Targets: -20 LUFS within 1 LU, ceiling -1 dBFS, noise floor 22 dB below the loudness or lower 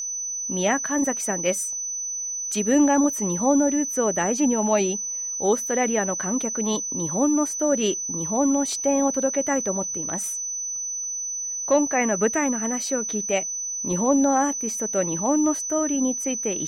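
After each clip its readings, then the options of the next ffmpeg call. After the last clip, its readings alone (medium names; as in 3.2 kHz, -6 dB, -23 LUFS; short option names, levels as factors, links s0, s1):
steady tone 6 kHz; tone level -27 dBFS; loudness -23.0 LUFS; peak level -9.0 dBFS; loudness target -20.0 LUFS
-> -af "bandreject=f=6000:w=30"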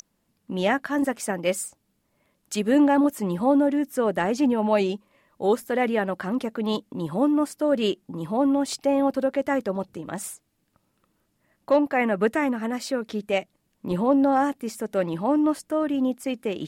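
steady tone not found; loudness -24.5 LUFS; peak level -10.0 dBFS; loudness target -20.0 LUFS
-> -af "volume=1.68"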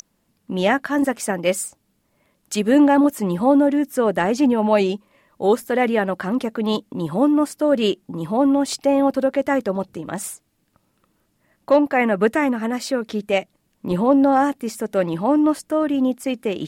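loudness -20.0 LUFS; peak level -5.5 dBFS; noise floor -68 dBFS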